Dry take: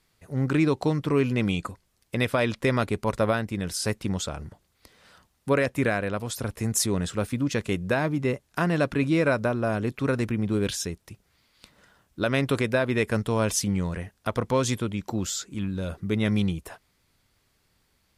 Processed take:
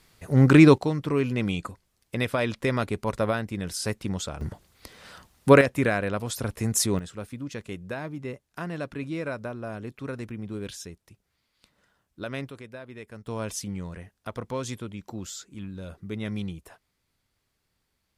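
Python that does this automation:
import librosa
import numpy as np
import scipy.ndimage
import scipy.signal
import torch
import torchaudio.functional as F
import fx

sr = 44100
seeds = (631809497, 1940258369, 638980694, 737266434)

y = fx.gain(x, sr, db=fx.steps((0.0, 8.5), (0.78, -2.0), (4.41, 8.0), (5.61, 0.5), (6.99, -9.5), (12.49, -18.0), (13.27, -8.0)))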